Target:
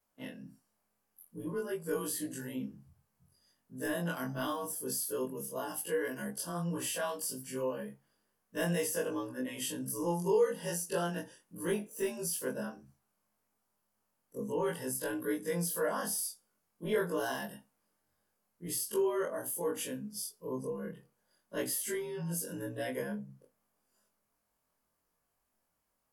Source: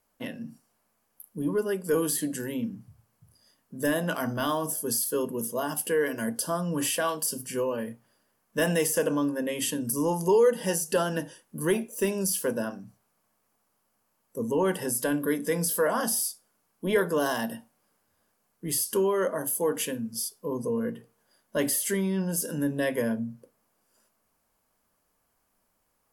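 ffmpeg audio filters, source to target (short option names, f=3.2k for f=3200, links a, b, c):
-af "afftfilt=real='re':imag='-im':win_size=2048:overlap=0.75,volume=-3.5dB"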